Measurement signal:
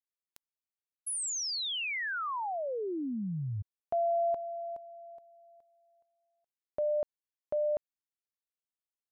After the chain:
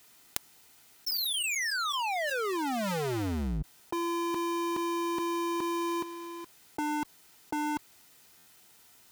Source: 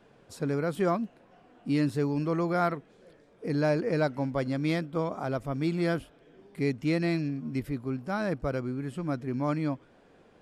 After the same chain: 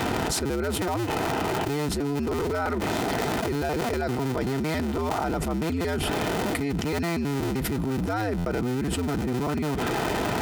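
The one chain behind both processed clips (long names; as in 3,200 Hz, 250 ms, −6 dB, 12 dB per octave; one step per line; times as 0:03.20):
sub-harmonics by changed cycles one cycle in 2, inverted
notch comb filter 560 Hz
buffer that repeats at 0:08.37, samples 512, times 7
envelope flattener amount 100%
level −2 dB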